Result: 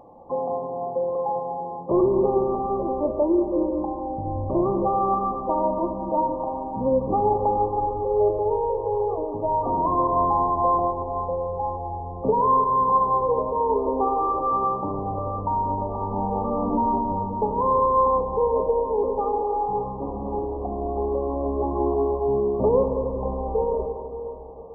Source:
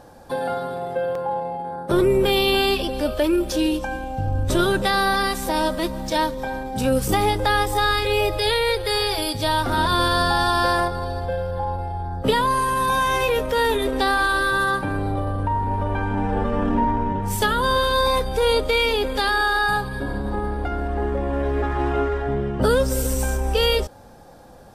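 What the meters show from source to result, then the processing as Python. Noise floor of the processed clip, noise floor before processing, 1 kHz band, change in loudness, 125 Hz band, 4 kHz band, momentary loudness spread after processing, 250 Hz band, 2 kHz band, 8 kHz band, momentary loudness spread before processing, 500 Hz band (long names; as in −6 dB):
−33 dBFS, −33 dBFS, +0.5 dB, −2.0 dB, −7.0 dB, below −40 dB, 9 LU, −2.0 dB, below −40 dB, below −40 dB, 8 LU, 0.0 dB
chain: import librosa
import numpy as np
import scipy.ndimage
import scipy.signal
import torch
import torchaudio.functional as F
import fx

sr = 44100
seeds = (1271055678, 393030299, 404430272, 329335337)

y = fx.brickwall_lowpass(x, sr, high_hz=1200.0)
y = fx.low_shelf(y, sr, hz=160.0, db=-11.5)
y = fx.rev_plate(y, sr, seeds[0], rt60_s=3.3, hf_ratio=0.95, predelay_ms=0, drr_db=4.5)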